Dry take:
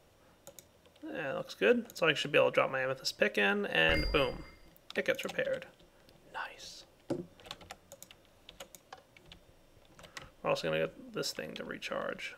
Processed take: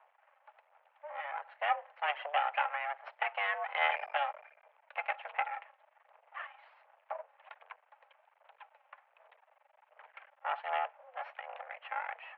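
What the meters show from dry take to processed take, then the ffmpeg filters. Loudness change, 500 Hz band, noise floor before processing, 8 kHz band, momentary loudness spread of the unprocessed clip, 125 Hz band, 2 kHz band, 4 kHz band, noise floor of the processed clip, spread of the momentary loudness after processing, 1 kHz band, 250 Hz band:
-3.5 dB, -11.5 dB, -64 dBFS, under -30 dB, 22 LU, under -40 dB, -3.0 dB, -9.0 dB, -72 dBFS, 21 LU, +6.0 dB, under -40 dB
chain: -af "aphaser=in_gain=1:out_gain=1:delay=3.9:decay=0.45:speed=1.3:type=sinusoidal,aeval=exprs='max(val(0),0)':c=same,highpass=f=280:t=q:w=0.5412,highpass=f=280:t=q:w=1.307,lowpass=f=2.3k:t=q:w=0.5176,lowpass=f=2.3k:t=q:w=0.7071,lowpass=f=2.3k:t=q:w=1.932,afreqshift=290,volume=1dB"

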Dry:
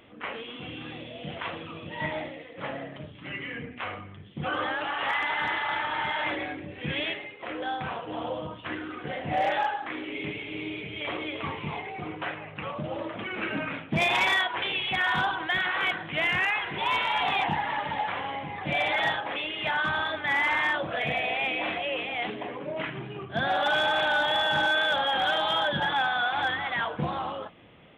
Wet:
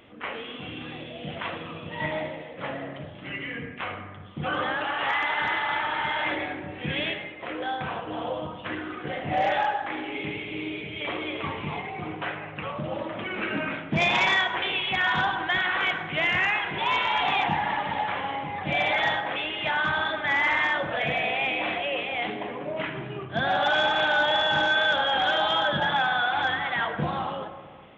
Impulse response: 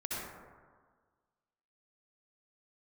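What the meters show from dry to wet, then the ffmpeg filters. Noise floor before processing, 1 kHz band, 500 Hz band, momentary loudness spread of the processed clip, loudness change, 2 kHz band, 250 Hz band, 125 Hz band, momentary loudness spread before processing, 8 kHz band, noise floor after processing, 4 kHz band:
-45 dBFS, +2.0 dB, +2.0 dB, 13 LU, +2.0 dB, +2.0 dB, +2.0 dB, +2.0 dB, 13 LU, n/a, -41 dBFS, +1.5 dB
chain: -filter_complex "[0:a]asplit=2[a][b];[1:a]atrim=start_sample=2205[c];[b][c]afir=irnorm=-1:irlink=0,volume=-10.5dB[d];[a][d]amix=inputs=2:normalize=0,aresample=16000,aresample=44100"

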